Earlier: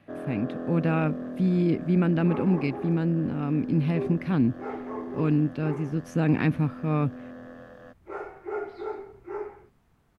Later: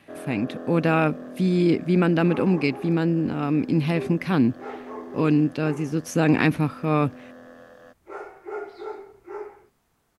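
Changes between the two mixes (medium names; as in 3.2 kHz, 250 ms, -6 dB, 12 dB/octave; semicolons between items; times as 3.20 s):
speech +7.5 dB; master: add tone controls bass -8 dB, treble +8 dB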